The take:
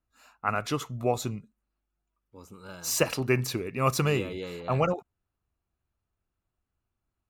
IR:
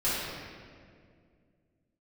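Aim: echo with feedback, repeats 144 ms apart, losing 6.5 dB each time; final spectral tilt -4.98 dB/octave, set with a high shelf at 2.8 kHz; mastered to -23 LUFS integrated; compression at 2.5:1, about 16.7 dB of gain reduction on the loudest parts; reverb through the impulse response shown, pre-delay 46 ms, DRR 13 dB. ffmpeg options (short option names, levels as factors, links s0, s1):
-filter_complex "[0:a]highshelf=f=2800:g=-5.5,acompressor=threshold=0.00501:ratio=2.5,aecho=1:1:144|288|432|576|720|864:0.473|0.222|0.105|0.0491|0.0231|0.0109,asplit=2[s0][s1];[1:a]atrim=start_sample=2205,adelay=46[s2];[s1][s2]afir=irnorm=-1:irlink=0,volume=0.0631[s3];[s0][s3]amix=inputs=2:normalize=0,volume=10"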